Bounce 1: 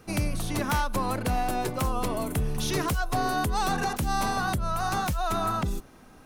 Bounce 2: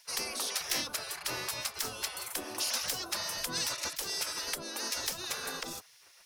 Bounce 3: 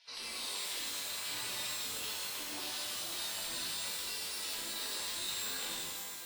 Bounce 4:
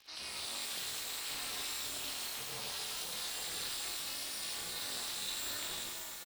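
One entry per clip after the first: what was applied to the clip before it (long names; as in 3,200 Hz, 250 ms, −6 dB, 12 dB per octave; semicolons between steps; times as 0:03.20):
gate on every frequency bin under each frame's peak −20 dB weak; parametric band 5,200 Hz +7.5 dB 0.52 octaves; level +2 dB
downward compressor 6 to 1, threshold −41 dBFS, peak gain reduction 13 dB; low-pass with resonance 3,800 Hz, resonance Q 3; reverb with rising layers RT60 1.8 s, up +12 semitones, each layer −2 dB, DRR −8 dB; level −8.5 dB
ring modulation 160 Hz; double-tracking delay 25 ms −12 dB; surface crackle 170 per second −51 dBFS; level +1.5 dB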